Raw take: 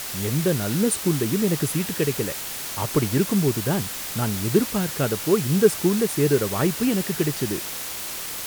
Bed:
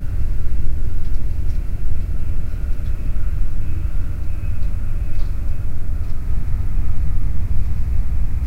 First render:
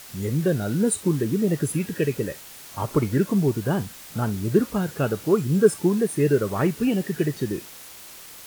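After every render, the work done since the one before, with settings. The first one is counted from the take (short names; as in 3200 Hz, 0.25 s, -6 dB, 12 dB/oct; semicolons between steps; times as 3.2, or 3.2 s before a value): noise print and reduce 11 dB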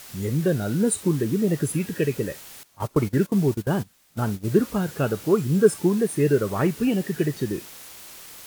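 2.63–4.5 gate -28 dBFS, range -18 dB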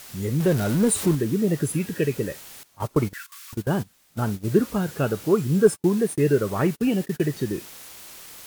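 0.4–1.15 zero-crossing step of -27 dBFS; 3.13–3.53 steep high-pass 1100 Hz 96 dB/oct; 5.67–7.22 gate -34 dBFS, range -37 dB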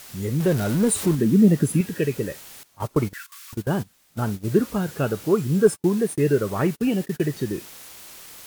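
1.18–1.81 bell 210 Hz +10 dB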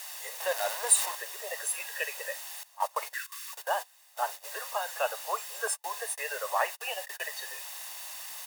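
steep high-pass 510 Hz 72 dB/oct; comb 1.1 ms, depth 56%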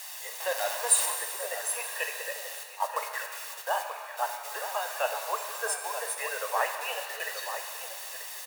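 outdoor echo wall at 160 m, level -8 dB; shimmer reverb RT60 2 s, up +7 st, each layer -8 dB, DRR 6 dB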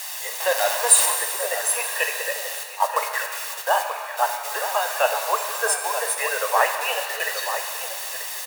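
gain +9 dB; limiter -1 dBFS, peak gain reduction 1.5 dB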